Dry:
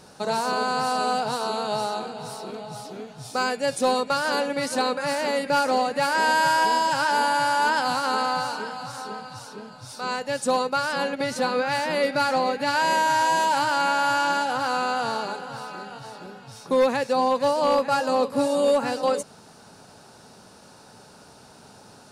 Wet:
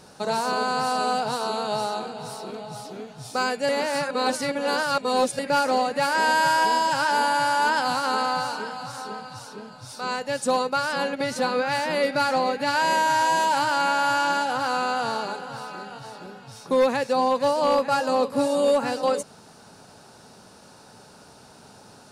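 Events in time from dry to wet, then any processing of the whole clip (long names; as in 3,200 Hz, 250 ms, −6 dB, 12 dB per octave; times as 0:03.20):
0:03.69–0:05.39: reverse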